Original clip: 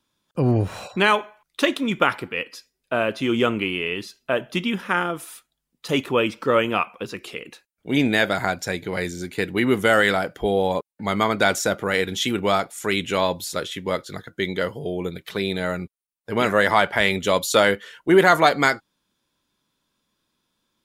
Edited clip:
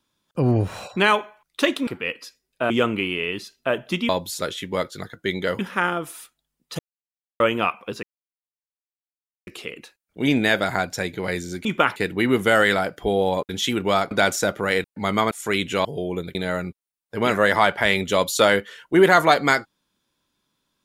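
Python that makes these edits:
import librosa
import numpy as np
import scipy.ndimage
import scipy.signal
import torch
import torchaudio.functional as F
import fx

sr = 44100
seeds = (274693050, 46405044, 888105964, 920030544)

y = fx.edit(x, sr, fx.move(start_s=1.87, length_s=0.31, to_s=9.34),
    fx.cut(start_s=3.01, length_s=0.32),
    fx.silence(start_s=5.92, length_s=0.61),
    fx.insert_silence(at_s=7.16, length_s=1.44),
    fx.swap(start_s=10.87, length_s=0.47, other_s=12.07, other_length_s=0.62),
    fx.move(start_s=13.23, length_s=1.5, to_s=4.72),
    fx.cut(start_s=15.23, length_s=0.27), tone=tone)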